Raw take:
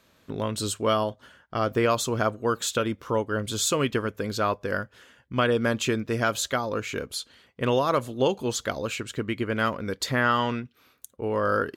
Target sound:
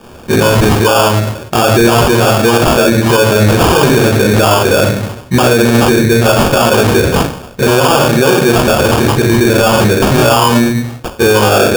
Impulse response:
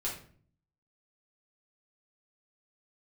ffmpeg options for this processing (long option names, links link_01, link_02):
-filter_complex "[1:a]atrim=start_sample=2205,afade=type=out:start_time=0.42:duration=0.01,atrim=end_sample=18963[link_01];[0:a][link_01]afir=irnorm=-1:irlink=0,asplit=2[link_02][link_03];[link_03]acompressor=threshold=-29dB:ratio=6,volume=3dB[link_04];[link_02][link_04]amix=inputs=2:normalize=0,acrusher=samples=22:mix=1:aa=0.000001,alimiter=level_in=17.5dB:limit=-1dB:release=50:level=0:latency=1,volume=-1dB"